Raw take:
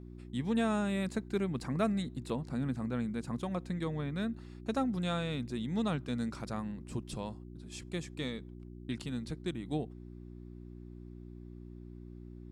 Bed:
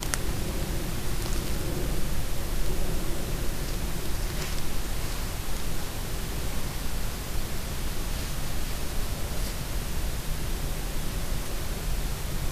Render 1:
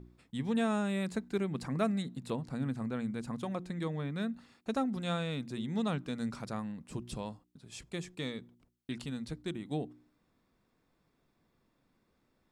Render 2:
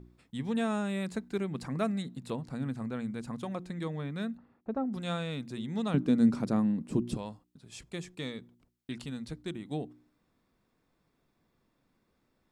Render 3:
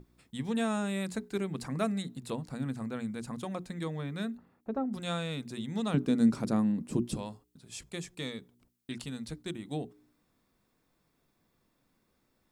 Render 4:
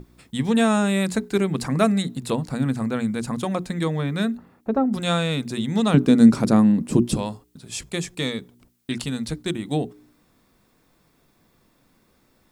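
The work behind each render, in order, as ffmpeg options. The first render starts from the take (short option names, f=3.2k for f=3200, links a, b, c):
-af "bandreject=f=60:t=h:w=4,bandreject=f=120:t=h:w=4,bandreject=f=180:t=h:w=4,bandreject=f=240:t=h:w=4,bandreject=f=300:t=h:w=4,bandreject=f=360:t=h:w=4"
-filter_complex "[0:a]asplit=3[a][b][c];[a]afade=t=out:st=4.36:d=0.02[d];[b]lowpass=1k,afade=t=in:st=4.36:d=0.02,afade=t=out:st=4.92:d=0.02[e];[c]afade=t=in:st=4.92:d=0.02[f];[d][e][f]amix=inputs=3:normalize=0,asettb=1/sr,asplit=3[g][h][i];[g]atrim=end=5.944[j];[h]atrim=start=5.94:end=7.17,asetpts=PTS-STARTPTS,afade=t=in:d=0.004:c=qsin,afade=t=out:st=1.226:d=0.004:c=qsin,equalizer=f=270:w=0.63:g=14[k];[i]atrim=start=7.166[l];[j][k]acrossfade=d=0.004:c1=hsin:c2=qsin[m];[m][l]acrossfade=d=0.004:c1=qsin:c2=hsin"
-af "highshelf=f=6k:g=8.5,bandreject=f=60:t=h:w=6,bandreject=f=120:t=h:w=6,bandreject=f=180:t=h:w=6,bandreject=f=240:t=h:w=6,bandreject=f=300:t=h:w=6,bandreject=f=360:t=h:w=6,bandreject=f=420:t=h:w=6"
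-af "volume=12dB"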